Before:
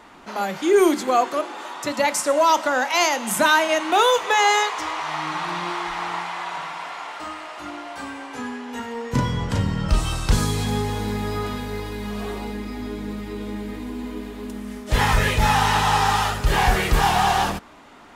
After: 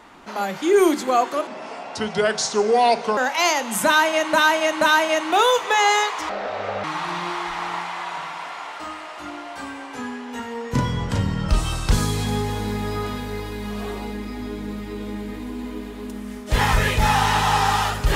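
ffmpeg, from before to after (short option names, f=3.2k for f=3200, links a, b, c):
-filter_complex "[0:a]asplit=7[a][b][c][d][e][f][g];[a]atrim=end=1.474[h];[b]atrim=start=1.47:end=2.73,asetpts=PTS-STARTPTS,asetrate=32634,aresample=44100,atrim=end_sample=75089,asetpts=PTS-STARTPTS[i];[c]atrim=start=2.726:end=3.892[j];[d]atrim=start=3.408:end=3.892[k];[e]atrim=start=3.408:end=4.894[l];[f]atrim=start=4.89:end=5.24,asetpts=PTS-STARTPTS,asetrate=28224,aresample=44100,atrim=end_sample=24117,asetpts=PTS-STARTPTS[m];[g]atrim=start=5.236[n];[h][i]acrossfade=d=0.004:c1=hsin:c2=hsin[o];[o][j]acrossfade=d=0.004:c1=hsin:c2=hsin[p];[p][k]acrossfade=d=0.004:c1=hsin:c2=hsin[q];[q][l]acrossfade=d=0.004:c1=hsin:c2=hsin[r];[r][m]acrossfade=d=0.004:c1=hsin:c2=hsin[s];[s][n]acrossfade=d=0.004:c1=hsin:c2=hsin"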